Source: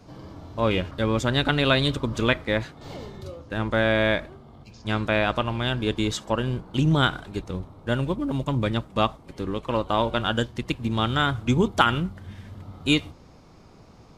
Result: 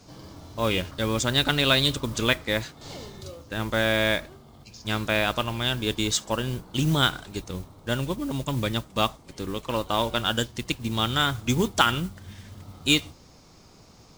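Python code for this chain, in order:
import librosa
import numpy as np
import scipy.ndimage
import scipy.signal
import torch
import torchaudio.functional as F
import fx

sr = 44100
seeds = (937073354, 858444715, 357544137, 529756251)

y = fx.peak_eq(x, sr, hz=6800.0, db=12.0, octaves=2.0)
y = fx.mod_noise(y, sr, seeds[0], snr_db=20)
y = F.gain(torch.from_numpy(y), -3.0).numpy()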